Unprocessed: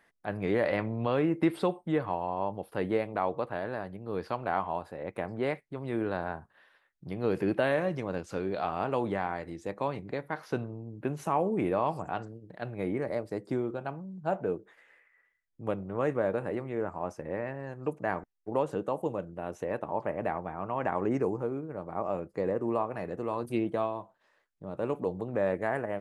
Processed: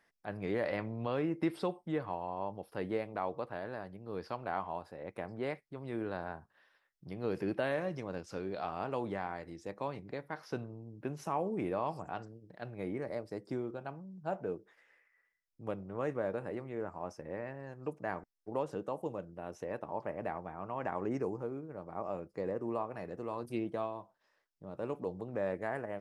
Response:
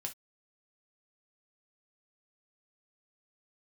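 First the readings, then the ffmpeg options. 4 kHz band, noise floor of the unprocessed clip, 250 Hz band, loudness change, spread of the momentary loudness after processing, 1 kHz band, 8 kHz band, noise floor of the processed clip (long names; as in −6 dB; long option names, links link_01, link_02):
−5.5 dB, −71 dBFS, −6.5 dB, −6.5 dB, 9 LU, −6.5 dB, can't be measured, −77 dBFS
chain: -af "equalizer=frequency=5300:width_type=o:width=0.32:gain=9.5,volume=-6.5dB"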